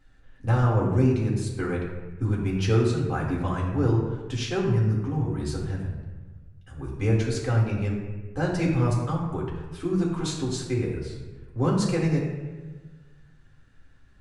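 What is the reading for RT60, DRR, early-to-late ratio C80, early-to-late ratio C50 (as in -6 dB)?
1.3 s, -3.5 dB, 5.0 dB, 3.0 dB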